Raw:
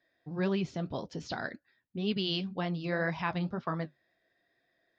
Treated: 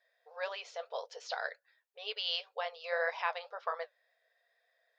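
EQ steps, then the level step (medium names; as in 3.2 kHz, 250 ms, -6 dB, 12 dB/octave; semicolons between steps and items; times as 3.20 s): brick-wall FIR high-pass 430 Hz; 0.0 dB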